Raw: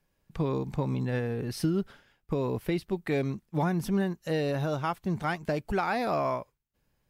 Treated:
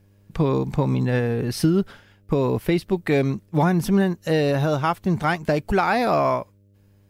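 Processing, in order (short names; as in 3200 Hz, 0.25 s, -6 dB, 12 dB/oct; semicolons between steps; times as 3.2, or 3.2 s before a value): buzz 100 Hz, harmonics 6, -65 dBFS -8 dB/oct; gain +8.5 dB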